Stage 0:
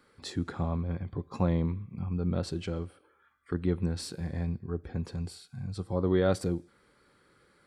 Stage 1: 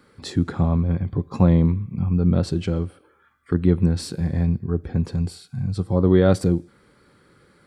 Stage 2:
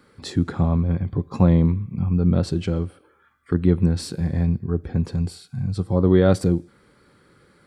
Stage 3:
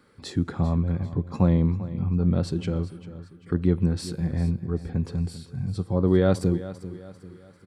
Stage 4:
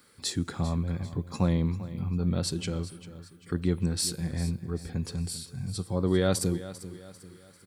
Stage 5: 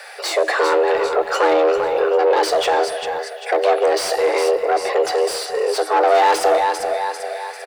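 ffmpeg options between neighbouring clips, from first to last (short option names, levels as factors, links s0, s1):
-af "equalizer=f=140:w=0.47:g=6.5,volume=2"
-af anull
-af "aecho=1:1:395|790|1185|1580:0.178|0.0747|0.0314|0.0132,volume=0.631"
-af "crystalizer=i=6:c=0,volume=0.531"
-filter_complex "[0:a]asplit=2[s0][s1];[s1]highpass=f=720:p=1,volume=35.5,asoftclip=type=tanh:threshold=0.224[s2];[s0][s2]amix=inputs=2:normalize=0,lowpass=f=1300:p=1,volume=0.501,afreqshift=310,asplit=2[s3][s4];[s4]adelay=350,highpass=300,lowpass=3400,asoftclip=type=hard:threshold=0.0944,volume=0.251[s5];[s3][s5]amix=inputs=2:normalize=0,volume=2.11"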